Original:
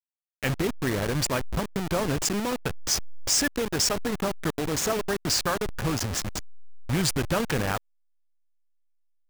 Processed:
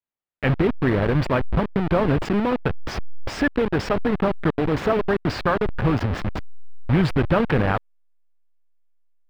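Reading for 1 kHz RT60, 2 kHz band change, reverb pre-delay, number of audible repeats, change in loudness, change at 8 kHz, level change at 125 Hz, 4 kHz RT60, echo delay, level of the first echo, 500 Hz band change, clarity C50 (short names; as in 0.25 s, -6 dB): none, +4.0 dB, none, none, +4.5 dB, -21.0 dB, +8.0 dB, none, none, none, +7.0 dB, none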